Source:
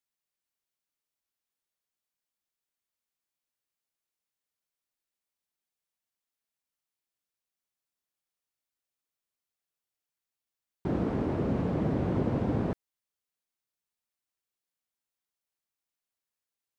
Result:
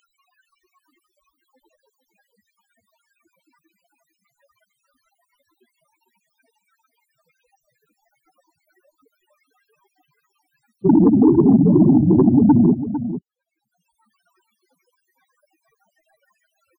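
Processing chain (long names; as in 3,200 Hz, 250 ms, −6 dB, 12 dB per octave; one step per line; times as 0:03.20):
spectral peaks only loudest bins 4
parametric band 370 Hz +5.5 dB 2.1 octaves
upward compression, threshold −56 dBFS
three-way crossover with the lows and the highs turned down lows −15 dB, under 190 Hz, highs −17 dB, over 2,100 Hz
sine wavefolder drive 12 dB, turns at −12.5 dBFS
on a send: single-tap delay 452 ms −11.5 dB
on the sum: level +6 dB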